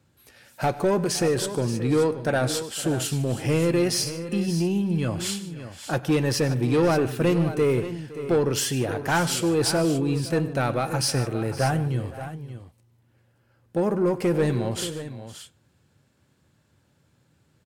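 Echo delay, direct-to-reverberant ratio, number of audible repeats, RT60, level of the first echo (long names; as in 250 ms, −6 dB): 99 ms, no reverb audible, 4, no reverb audible, −19.0 dB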